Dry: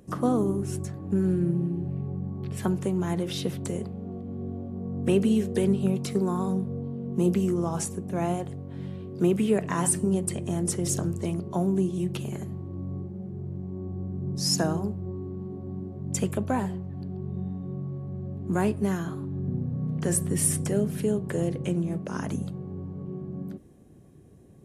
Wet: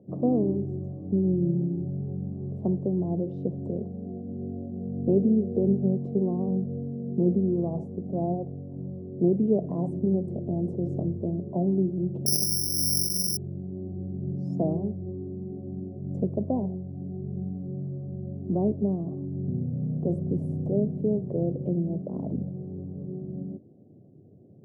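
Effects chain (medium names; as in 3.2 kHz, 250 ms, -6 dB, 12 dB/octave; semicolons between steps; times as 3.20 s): elliptic band-pass 100–660 Hz, stop band 40 dB; 12.26–13.37 s: careless resampling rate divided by 8×, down filtered, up zero stuff; trim +1 dB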